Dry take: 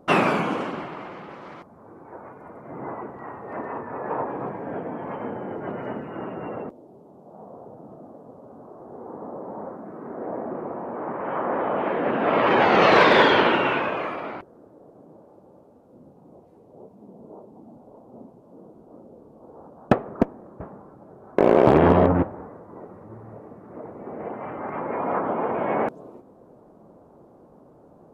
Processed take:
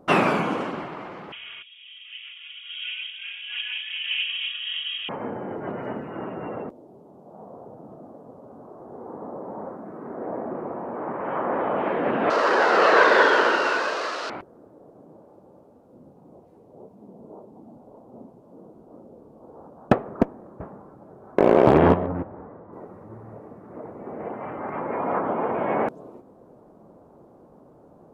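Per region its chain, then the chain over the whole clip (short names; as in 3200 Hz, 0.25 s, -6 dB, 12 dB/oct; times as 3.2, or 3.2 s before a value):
1.32–5.09 comb 3.9 ms, depth 46% + inverted band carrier 3500 Hz
12.3–14.3 switching spikes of -12 dBFS + speaker cabinet 430–4300 Hz, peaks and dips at 450 Hz +3 dB, 800 Hz -4 dB, 1500 Hz +5 dB, 2300 Hz -9 dB, 3400 Hz -8 dB
21.94–22.73 compressor 1.5:1, threshold -38 dBFS + air absorption 290 m
whole clip: dry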